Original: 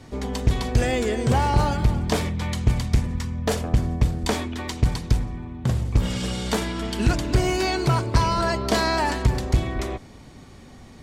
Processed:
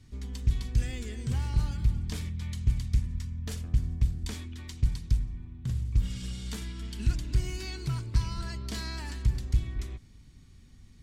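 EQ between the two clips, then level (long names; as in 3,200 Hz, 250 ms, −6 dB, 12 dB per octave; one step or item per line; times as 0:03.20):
guitar amp tone stack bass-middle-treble 6-0-2
low-shelf EQ 67 Hz +7.5 dB
+3.5 dB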